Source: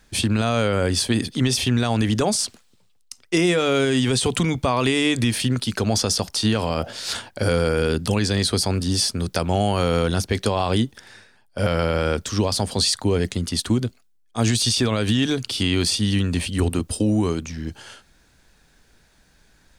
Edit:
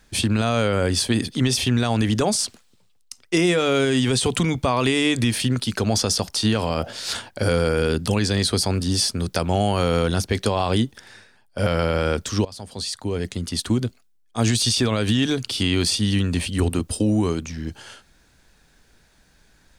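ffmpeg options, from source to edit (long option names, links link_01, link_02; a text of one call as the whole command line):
ffmpeg -i in.wav -filter_complex "[0:a]asplit=2[link_01][link_02];[link_01]atrim=end=12.45,asetpts=PTS-STARTPTS,afade=type=out:start_time=12.446:duration=0.004:curve=hsin:silence=0.112202[link_03];[link_02]atrim=start=12.45,asetpts=PTS-STARTPTS,afade=type=in:duration=1.41:silence=0.112202[link_04];[link_03][link_04]concat=n=2:v=0:a=1" out.wav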